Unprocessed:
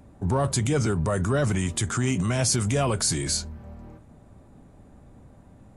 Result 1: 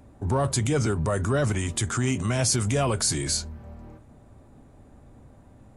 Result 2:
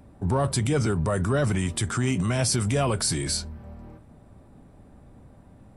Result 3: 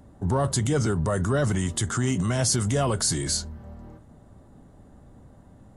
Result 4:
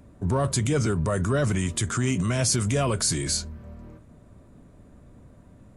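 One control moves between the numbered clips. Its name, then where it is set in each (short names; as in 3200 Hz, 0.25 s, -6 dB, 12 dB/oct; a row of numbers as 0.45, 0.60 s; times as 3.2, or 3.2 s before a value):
notch, frequency: 180, 6700, 2400, 810 Hz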